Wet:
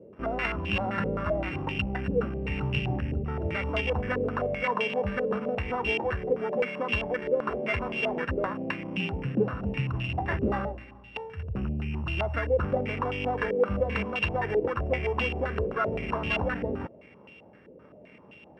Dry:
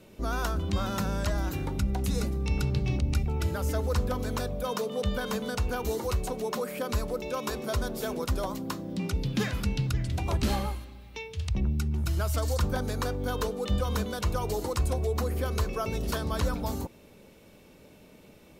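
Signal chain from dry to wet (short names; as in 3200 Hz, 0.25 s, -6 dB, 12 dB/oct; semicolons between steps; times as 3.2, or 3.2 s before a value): sample sorter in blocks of 16 samples; HPF 87 Hz 12 dB/oct; stepped low-pass 7.7 Hz 490–2800 Hz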